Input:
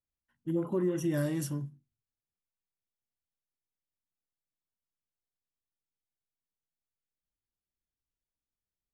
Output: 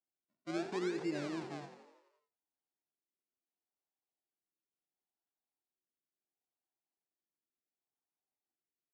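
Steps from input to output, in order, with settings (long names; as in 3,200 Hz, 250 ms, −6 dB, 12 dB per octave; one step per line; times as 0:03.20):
sample-and-hold swept by an LFO 36×, swing 100% 0.71 Hz
loudspeaker in its box 240–6,900 Hz, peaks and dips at 340 Hz +4 dB, 510 Hz −9 dB, 760 Hz +7 dB, 1,200 Hz −4 dB, 3,100 Hz −5 dB, 6,100 Hz −3 dB
on a send: echo with shifted repeats 85 ms, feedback 62%, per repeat +44 Hz, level −11 dB
on the sum: level −7.5 dB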